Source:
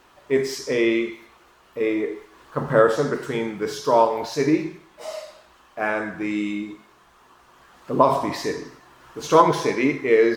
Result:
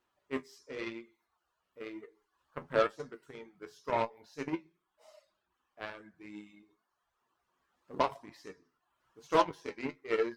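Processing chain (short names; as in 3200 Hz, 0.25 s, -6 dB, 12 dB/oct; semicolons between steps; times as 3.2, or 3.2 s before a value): reverb removal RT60 0.78 s; added harmonics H 7 -19 dB, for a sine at -2.5 dBFS; flange 0.97 Hz, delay 8.2 ms, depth 4.4 ms, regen +51%; gain -7.5 dB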